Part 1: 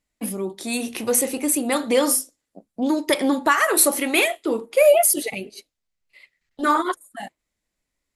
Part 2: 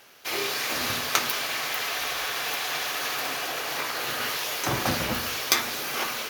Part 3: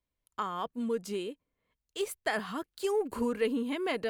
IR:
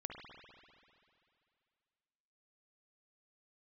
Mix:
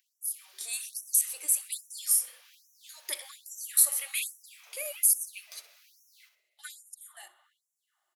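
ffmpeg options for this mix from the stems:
-filter_complex "[0:a]acompressor=threshold=-28dB:ratio=1.5,volume=-3dB,asplit=3[a][b][c];[b]volume=-6.5dB[d];[c]volume=-17dB[e];[1:a]lowpass=f=2.2k:p=1,acompressor=mode=upward:threshold=-47dB:ratio=2.5,volume=-18dB,asplit=2[f][g];[g]volume=-7.5dB[h];[2:a]agate=range=-33dB:threshold=-42dB:ratio=3:detection=peak,highpass=f=2.6k:t=q:w=2.2,volume=-15dB[i];[3:a]atrim=start_sample=2205[j];[d][j]afir=irnorm=-1:irlink=0[k];[e][h]amix=inputs=2:normalize=0,aecho=0:1:63|126|189|252|315:1|0.34|0.116|0.0393|0.0134[l];[a][f][i][k][l]amix=inputs=5:normalize=0,aderivative,afftfilt=real='re*gte(b*sr/1024,300*pow(5600/300,0.5+0.5*sin(2*PI*1.2*pts/sr)))':imag='im*gte(b*sr/1024,300*pow(5600/300,0.5+0.5*sin(2*PI*1.2*pts/sr)))':win_size=1024:overlap=0.75"

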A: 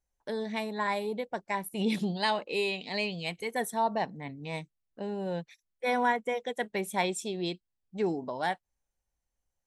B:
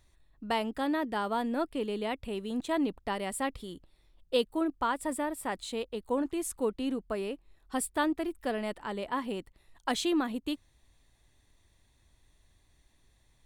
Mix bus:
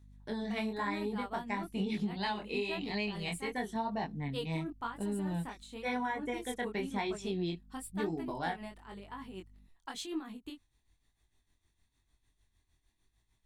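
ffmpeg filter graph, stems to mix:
-filter_complex "[0:a]acrossover=split=5900[a][b];[b]acompressor=threshold=-60dB:ratio=4:attack=1:release=60[c];[a][c]amix=inputs=2:normalize=0,lowshelf=f=220:g=8.5,aeval=exprs='val(0)+0.00178*(sin(2*PI*50*n/s)+sin(2*PI*2*50*n/s)/2+sin(2*PI*3*50*n/s)/3+sin(2*PI*4*50*n/s)/4+sin(2*PI*5*50*n/s)/5)':c=same,volume=0.5dB[d];[1:a]tremolo=f=6.6:d=0.67,volume=-3.5dB[e];[d][e]amix=inputs=2:normalize=0,equalizer=f=550:t=o:w=0.35:g=-10,flanger=delay=19:depth=5.6:speed=0.98,acompressor=threshold=-31dB:ratio=5"

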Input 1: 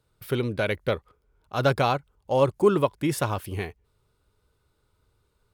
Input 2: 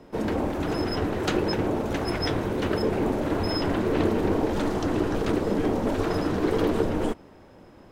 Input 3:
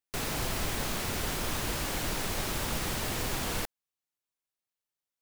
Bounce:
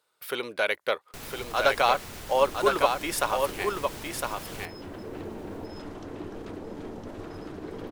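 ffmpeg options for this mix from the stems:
-filter_complex "[0:a]highpass=640,volume=3dB,asplit=3[a][b][c];[b]volume=-5dB[d];[1:a]adelay=1200,volume=-15.5dB,asplit=2[e][f];[f]volume=-4dB[g];[2:a]alimiter=level_in=2.5dB:limit=-24dB:level=0:latency=1:release=176,volume=-2.5dB,adelay=1000,volume=-4.5dB,asplit=2[h][i];[i]volume=-19dB[j];[c]apad=whole_len=401840[k];[e][k]sidechaincompress=threshold=-36dB:ratio=8:attack=16:release=1440[l];[d][g][j]amix=inputs=3:normalize=0,aecho=0:1:1009:1[m];[a][l][h][m]amix=inputs=4:normalize=0"

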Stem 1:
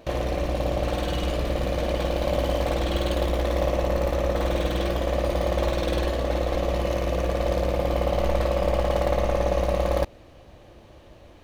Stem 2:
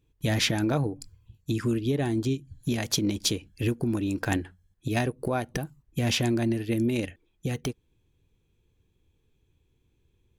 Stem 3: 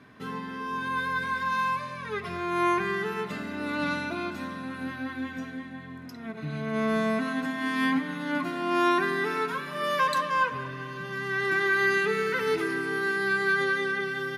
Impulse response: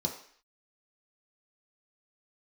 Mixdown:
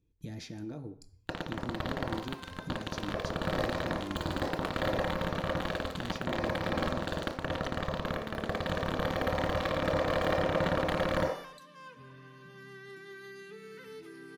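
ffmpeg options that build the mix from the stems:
-filter_complex "[0:a]highpass=f=130:p=1,acrusher=bits=2:mix=0:aa=0.5,adelay=1200,volume=3dB,asplit=2[a][b];[b]volume=-6.5dB[c];[1:a]acompressor=threshold=-33dB:ratio=5,volume=-12.5dB,asplit=2[d][e];[e]volume=-7dB[f];[2:a]adelay=1450,volume=-13dB[g];[d][g]amix=inputs=2:normalize=0,acrossover=split=450|3000[h][i][j];[i]acompressor=threshold=-58dB:ratio=2[k];[h][k][j]amix=inputs=3:normalize=0,alimiter=level_in=14.5dB:limit=-24dB:level=0:latency=1:release=424,volume=-14.5dB,volume=0dB[l];[3:a]atrim=start_sample=2205[m];[c][f]amix=inputs=2:normalize=0[n];[n][m]afir=irnorm=-1:irlink=0[o];[a][l][o]amix=inputs=3:normalize=0,alimiter=limit=-18.5dB:level=0:latency=1:release=27"

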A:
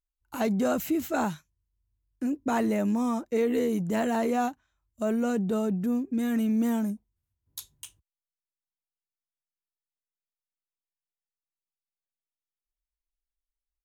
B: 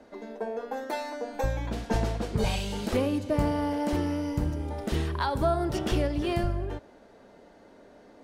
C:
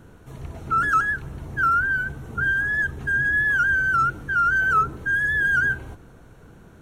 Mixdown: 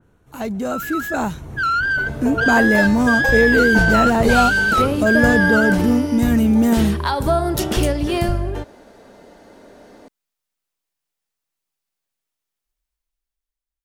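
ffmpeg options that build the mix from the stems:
-filter_complex "[0:a]volume=0.5dB[a];[1:a]highshelf=f=6.9k:g=9,adelay=1850,volume=-3dB[b];[2:a]dynaudnorm=f=220:g=13:m=8dB,asoftclip=type=tanh:threshold=-13.5dB,volume=-10dB[c];[a][b][c]amix=inputs=3:normalize=0,dynaudnorm=f=400:g=7:m=11.5dB,adynamicequalizer=threshold=0.0562:dfrequency=3100:dqfactor=0.7:tfrequency=3100:tqfactor=0.7:attack=5:release=100:ratio=0.375:range=1.5:mode=cutabove:tftype=highshelf"

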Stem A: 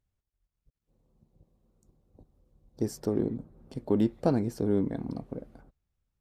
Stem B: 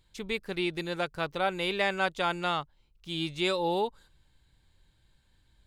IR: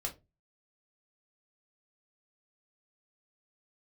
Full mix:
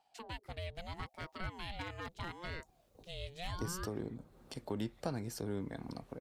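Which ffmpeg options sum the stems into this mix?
-filter_complex "[0:a]tiltshelf=f=660:g=-9.5,adelay=800,volume=1.5dB[a];[1:a]aeval=exprs='0.119*(abs(mod(val(0)/0.119+3,4)-2)-1)':c=same,aeval=exprs='val(0)*sin(2*PI*530*n/s+530*0.5/0.77*sin(2*PI*0.77*n/s))':c=same,volume=-5.5dB[b];[a][b]amix=inputs=2:normalize=0,acrossover=split=150[c][d];[d]acompressor=threshold=-47dB:ratio=2[e];[c][e]amix=inputs=2:normalize=0"

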